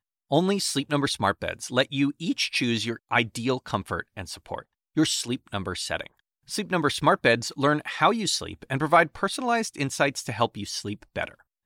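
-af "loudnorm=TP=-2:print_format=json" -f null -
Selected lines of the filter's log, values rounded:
"input_i" : "-25.8",
"input_tp" : "-6.9",
"input_lra" : "4.3",
"input_thresh" : "-36.0",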